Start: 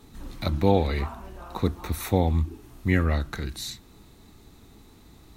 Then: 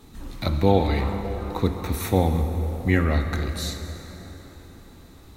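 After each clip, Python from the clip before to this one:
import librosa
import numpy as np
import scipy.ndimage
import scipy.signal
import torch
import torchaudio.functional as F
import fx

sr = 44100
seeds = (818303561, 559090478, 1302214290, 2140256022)

y = fx.rev_plate(x, sr, seeds[0], rt60_s=4.5, hf_ratio=0.6, predelay_ms=0, drr_db=6.0)
y = F.gain(torch.from_numpy(y), 2.0).numpy()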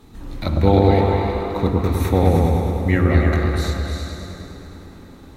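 y = fx.high_shelf(x, sr, hz=4300.0, db=-6.0)
y = fx.echo_opening(y, sr, ms=104, hz=750, octaves=2, feedback_pct=70, wet_db=0)
y = F.gain(torch.from_numpy(y), 2.0).numpy()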